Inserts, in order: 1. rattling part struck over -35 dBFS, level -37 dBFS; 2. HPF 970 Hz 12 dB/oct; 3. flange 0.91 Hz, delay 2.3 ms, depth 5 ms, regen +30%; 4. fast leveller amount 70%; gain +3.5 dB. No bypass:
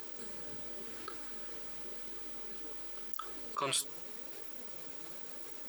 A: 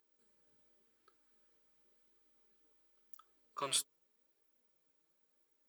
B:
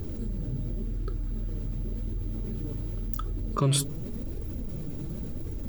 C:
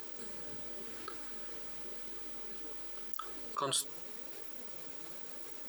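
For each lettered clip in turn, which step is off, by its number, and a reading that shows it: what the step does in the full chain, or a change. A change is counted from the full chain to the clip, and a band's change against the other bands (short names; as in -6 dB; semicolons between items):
4, crest factor change +3.0 dB; 2, 125 Hz band +24.5 dB; 1, 2 kHz band -2.5 dB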